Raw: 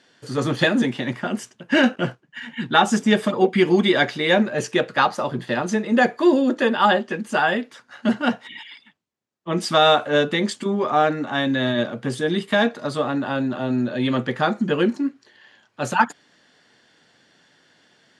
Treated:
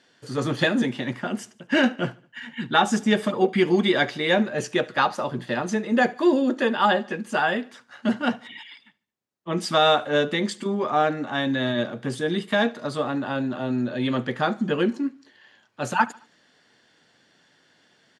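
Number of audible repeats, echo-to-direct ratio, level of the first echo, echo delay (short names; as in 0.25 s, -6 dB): 2, -22.0 dB, -23.0 dB, 73 ms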